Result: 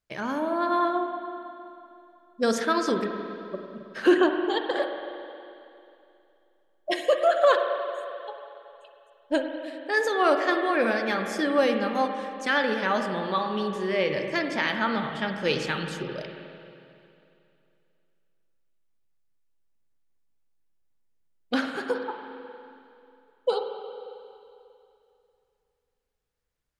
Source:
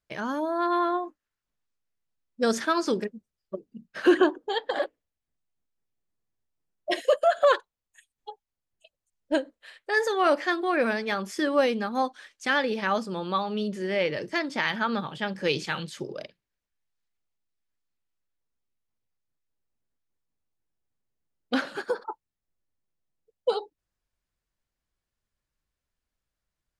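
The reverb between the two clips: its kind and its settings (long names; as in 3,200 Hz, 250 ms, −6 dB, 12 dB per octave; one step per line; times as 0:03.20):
spring reverb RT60 2.7 s, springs 45/53 ms, chirp 55 ms, DRR 4.5 dB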